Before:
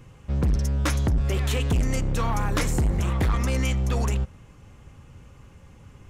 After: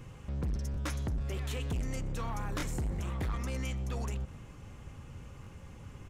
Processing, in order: limiter -30 dBFS, peak gain reduction 11.5 dB; on a send: frequency-shifting echo 0.124 s, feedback 49%, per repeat +80 Hz, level -23.5 dB; on the sum: stuck buffer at 0.72/2.58/5.42, samples 1024, times 1

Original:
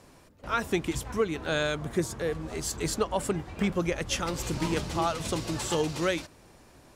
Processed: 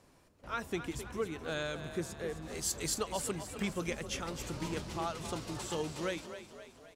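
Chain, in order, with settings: 2.42–3.93 high shelf 2500 Hz +9 dB; frequency-shifting echo 0.262 s, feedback 54%, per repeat +34 Hz, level -11 dB; gain -9 dB

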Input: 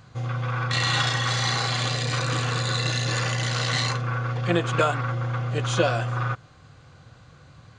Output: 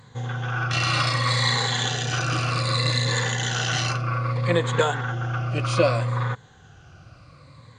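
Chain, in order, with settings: moving spectral ripple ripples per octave 1, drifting -0.64 Hz, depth 11 dB

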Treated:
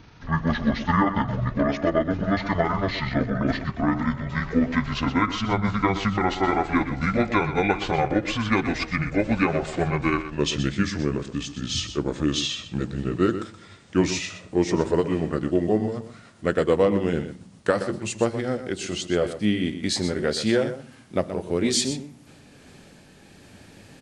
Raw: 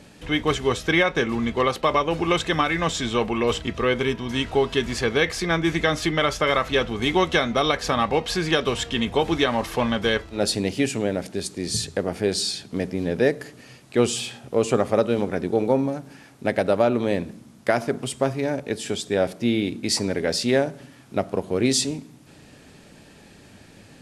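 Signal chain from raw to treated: gliding pitch shift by -11 st ending unshifted; echo 0.124 s -11.5 dB

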